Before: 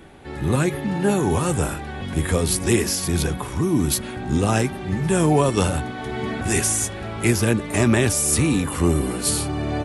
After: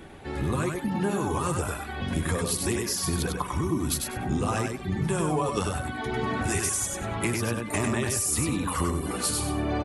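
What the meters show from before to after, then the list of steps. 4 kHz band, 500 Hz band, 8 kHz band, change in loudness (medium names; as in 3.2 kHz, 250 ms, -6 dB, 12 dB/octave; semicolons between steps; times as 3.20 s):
-5.5 dB, -7.5 dB, -5.5 dB, -6.5 dB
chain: reverb removal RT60 0.89 s; dynamic bell 1.1 kHz, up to +7 dB, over -45 dBFS, Q 3.1; compression, threshold -25 dBFS, peak gain reduction 12 dB; on a send: feedback delay 98 ms, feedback 22%, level -4 dB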